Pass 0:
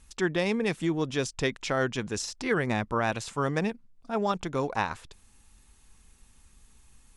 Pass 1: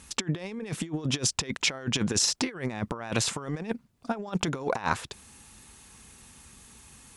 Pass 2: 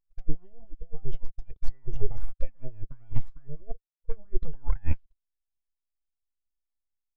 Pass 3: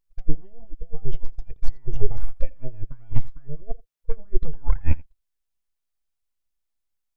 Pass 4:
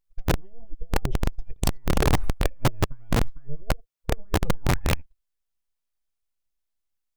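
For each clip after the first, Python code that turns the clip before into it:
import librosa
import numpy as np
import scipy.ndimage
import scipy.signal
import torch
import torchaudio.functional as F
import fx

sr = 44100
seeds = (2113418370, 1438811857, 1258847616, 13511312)

y1 = scipy.signal.sosfilt(scipy.signal.butter(2, 94.0, 'highpass', fs=sr, output='sos'), x)
y1 = fx.over_compress(y1, sr, threshold_db=-34.0, ratio=-0.5)
y1 = F.gain(torch.from_numpy(y1), 5.0).numpy()
y2 = scipy.ndimage.median_filter(y1, 5, mode='constant')
y2 = np.abs(y2)
y2 = fx.spectral_expand(y2, sr, expansion=2.5)
y2 = F.gain(torch.from_numpy(y2), 1.0).numpy()
y3 = y2 + 10.0 ** (-23.5 / 20.0) * np.pad(y2, (int(84 * sr / 1000.0), 0))[:len(y2)]
y3 = F.gain(torch.from_numpy(y3), 5.5).numpy()
y4 = (np.mod(10.0 ** (14.0 / 20.0) * y3 + 1.0, 2.0) - 1.0) / 10.0 ** (14.0 / 20.0)
y4 = F.gain(torch.from_numpy(y4), -1.5).numpy()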